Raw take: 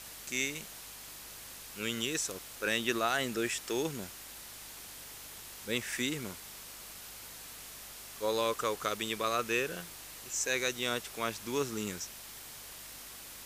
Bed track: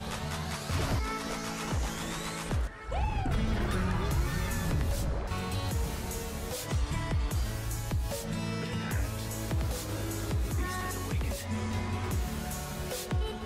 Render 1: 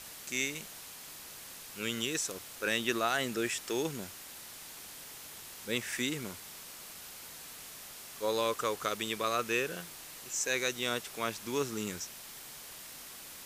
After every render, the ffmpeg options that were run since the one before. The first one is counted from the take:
-af "bandreject=f=50:t=h:w=4,bandreject=f=100:t=h:w=4"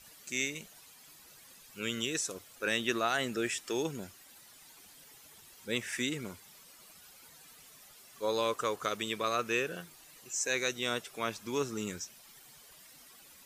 -af "afftdn=nr=12:nf=-48"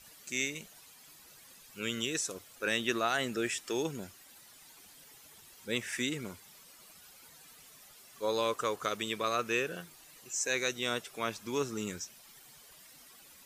-af anull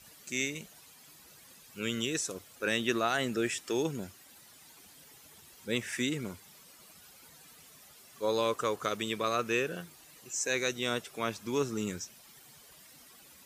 -af "highpass=49,lowshelf=f=440:g=4.5"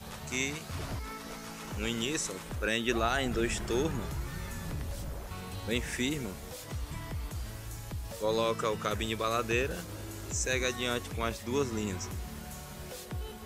-filter_complex "[1:a]volume=0.422[s0];[0:a][s0]amix=inputs=2:normalize=0"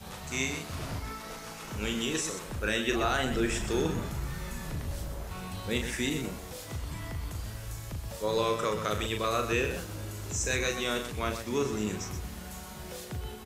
-af "aecho=1:1:37.9|125.4:0.501|0.355"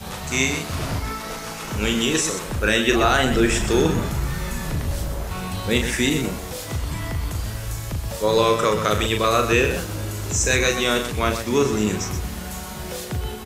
-af "volume=3.35"

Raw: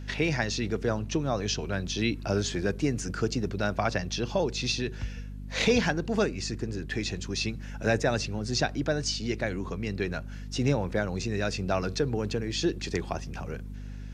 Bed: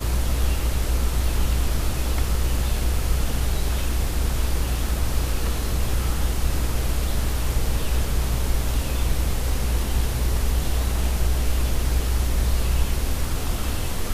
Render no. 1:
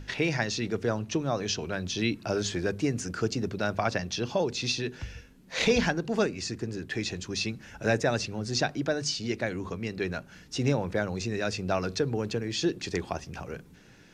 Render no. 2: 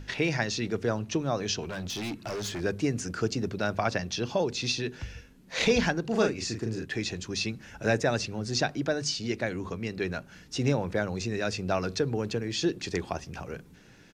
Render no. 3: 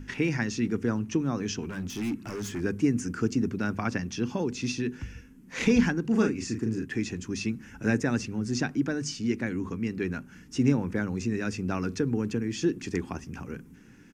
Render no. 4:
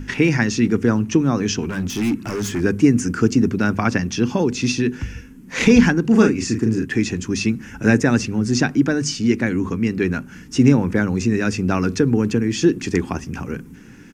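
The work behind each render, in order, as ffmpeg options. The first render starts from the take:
-af "bandreject=f=50:t=h:w=6,bandreject=f=100:t=h:w=6,bandreject=f=150:t=h:w=6,bandreject=f=200:t=h:w=6,bandreject=f=250:t=h:w=6"
-filter_complex "[0:a]asettb=1/sr,asplit=3[s0][s1][s2];[s0]atrim=end=1.624[s3];[s1]atrim=start=1.62:end=2.61,asetpts=PTS-STARTPTS,afade=t=in:d=0.004:c=qsin,afade=t=out:st=0.986:d=0.004:c=qsin,volume=35.5,asoftclip=hard,volume=0.0282[s4];[s2]atrim=start=2.606[s5];[s3][s4]acrossfade=d=0.004:c1=hsin:c2=qsin[s6];[s6][s5]acrossfade=d=0.004:c1=qsin:c2=hsin,asplit=3[s7][s8][s9];[s7]afade=t=out:st=6.1:d=0.02[s10];[s8]asplit=2[s11][s12];[s12]adelay=36,volume=0.631[s13];[s11][s13]amix=inputs=2:normalize=0,afade=t=in:st=6.1:d=0.02,afade=t=out:st=6.84:d=0.02[s14];[s9]afade=t=in:st=6.84:d=0.02[s15];[s10][s14][s15]amix=inputs=3:normalize=0"
-af "equalizer=f=250:t=o:w=0.67:g=9,equalizer=f=630:t=o:w=0.67:g=-12,equalizer=f=4000:t=o:w=0.67:g=-12"
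-af "volume=3.35,alimiter=limit=0.794:level=0:latency=1"

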